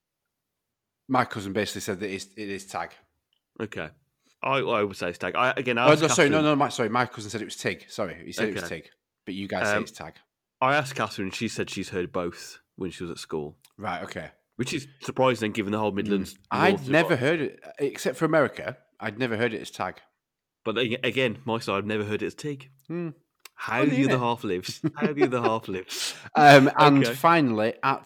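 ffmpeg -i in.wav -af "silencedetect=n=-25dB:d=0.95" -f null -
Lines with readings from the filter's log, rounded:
silence_start: 0.00
silence_end: 1.11 | silence_duration: 1.11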